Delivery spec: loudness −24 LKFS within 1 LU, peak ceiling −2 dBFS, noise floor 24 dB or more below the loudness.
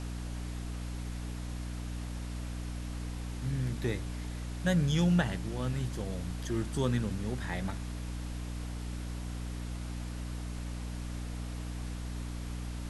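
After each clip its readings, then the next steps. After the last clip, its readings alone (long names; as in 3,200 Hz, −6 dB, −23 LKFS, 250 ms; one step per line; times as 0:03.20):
mains hum 60 Hz; hum harmonics up to 300 Hz; level of the hum −36 dBFS; background noise floor −39 dBFS; target noise floor −60 dBFS; integrated loudness −36.0 LKFS; sample peak −15.5 dBFS; target loudness −24.0 LKFS
→ mains-hum notches 60/120/180/240/300 Hz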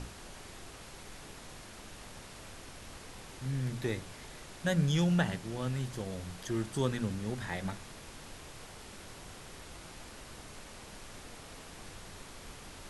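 mains hum none found; background noise floor −50 dBFS; target noise floor −62 dBFS
→ noise reduction from a noise print 12 dB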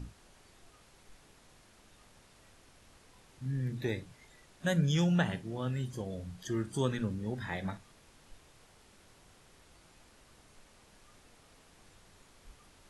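background noise floor −62 dBFS; integrated loudness −34.5 LKFS; sample peak −16.5 dBFS; target loudness −24.0 LKFS
→ level +10.5 dB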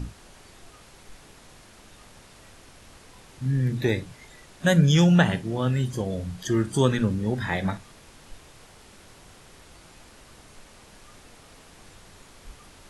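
integrated loudness −24.0 LKFS; sample peak −6.0 dBFS; background noise floor −51 dBFS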